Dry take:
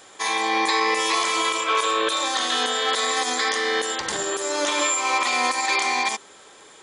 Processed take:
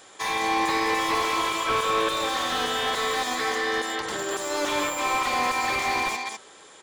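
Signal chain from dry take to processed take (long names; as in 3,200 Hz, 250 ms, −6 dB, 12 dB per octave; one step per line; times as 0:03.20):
0:03.35–0:04.31: high-shelf EQ 3,200 Hz −5.5 dB
single-tap delay 203 ms −7 dB
slew-rate limiting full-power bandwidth 170 Hz
level −2 dB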